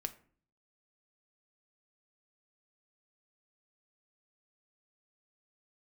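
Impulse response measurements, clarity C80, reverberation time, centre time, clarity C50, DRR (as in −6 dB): 20.0 dB, 0.45 s, 5 ms, 16.5 dB, 8.0 dB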